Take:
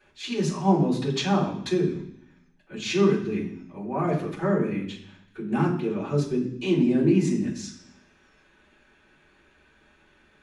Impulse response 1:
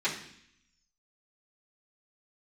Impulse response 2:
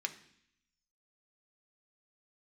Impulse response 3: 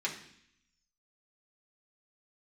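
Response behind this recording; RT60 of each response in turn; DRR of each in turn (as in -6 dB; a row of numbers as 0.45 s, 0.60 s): 1; 0.65 s, 0.65 s, 0.65 s; -11.5 dB, 5.0 dB, -4.0 dB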